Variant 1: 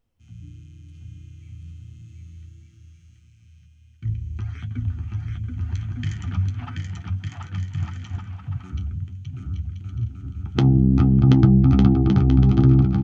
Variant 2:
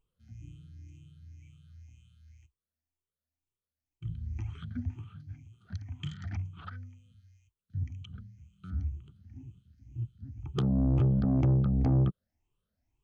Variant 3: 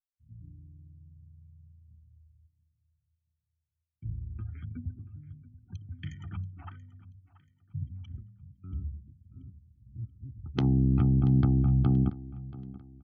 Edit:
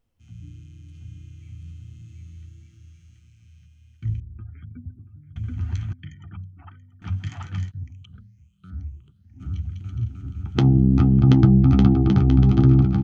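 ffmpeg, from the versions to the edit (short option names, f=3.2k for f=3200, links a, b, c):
-filter_complex "[2:a]asplit=2[a][b];[0:a]asplit=4[c][d][e][f];[c]atrim=end=4.202[g];[a]atrim=start=4.198:end=5.362[h];[d]atrim=start=5.358:end=5.932[i];[b]atrim=start=5.928:end=7.022[j];[e]atrim=start=7.018:end=7.72[k];[1:a]atrim=start=7.68:end=9.43[l];[f]atrim=start=9.39[m];[g][h]acrossfade=d=0.004:c1=hsin:c2=hsin[n];[n][i]acrossfade=d=0.004:c1=hsin:c2=hsin[o];[o][j]acrossfade=d=0.004:c1=hsin:c2=hsin[p];[p][k]acrossfade=d=0.004:c1=hsin:c2=hsin[q];[q][l]acrossfade=d=0.04:c1=tri:c2=tri[r];[r][m]acrossfade=d=0.04:c1=tri:c2=tri"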